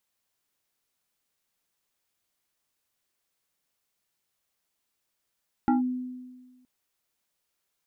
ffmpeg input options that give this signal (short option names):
-f lavfi -i "aevalsrc='0.133*pow(10,-3*t/1.43)*sin(2*PI*252*t+1.3*clip(1-t/0.14,0,1)*sin(2*PI*2.23*252*t))':d=0.97:s=44100"